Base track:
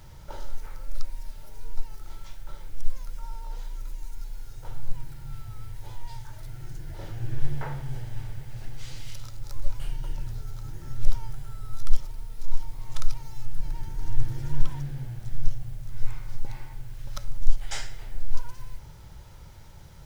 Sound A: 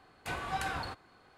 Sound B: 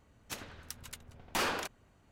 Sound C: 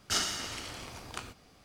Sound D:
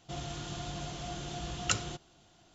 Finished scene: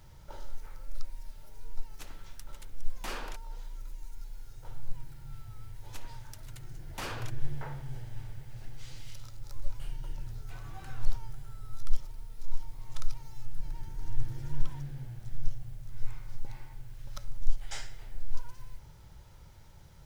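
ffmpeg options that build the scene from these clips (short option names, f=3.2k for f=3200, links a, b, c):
-filter_complex "[2:a]asplit=2[a][b];[0:a]volume=-6.5dB[c];[a]atrim=end=2.11,asetpts=PTS-STARTPTS,volume=-8dB,afade=t=in:d=0.004:c=hsin,afade=t=out:st=2.106:d=0.004:c=hsin,adelay=1690[d];[b]atrim=end=2.11,asetpts=PTS-STARTPTS,volume=-7.5dB,afade=t=in:d=0.004:c=hsin,afade=t=out:st=2.106:d=0.004:c=hsin,adelay=5630[e];[1:a]atrim=end=1.37,asetpts=PTS-STARTPTS,volume=-16dB,afade=t=in:d=0.004:c=hsin,afade=t=out:st=1.366:d=0.004:c=hsin,adelay=10230[f];[c][d][e][f]amix=inputs=4:normalize=0"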